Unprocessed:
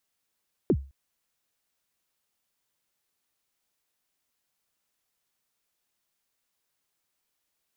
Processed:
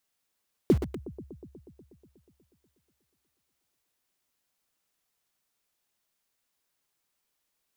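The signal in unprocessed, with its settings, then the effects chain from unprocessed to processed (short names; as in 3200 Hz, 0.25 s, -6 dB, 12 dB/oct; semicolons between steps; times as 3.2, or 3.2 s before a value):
kick drum length 0.21 s, from 450 Hz, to 68 Hz, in 61 ms, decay 0.33 s, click off, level -15 dB
analogue delay 0.121 s, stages 1024, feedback 76%, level -12 dB; in parallel at -9.5 dB: bit-crush 5-bit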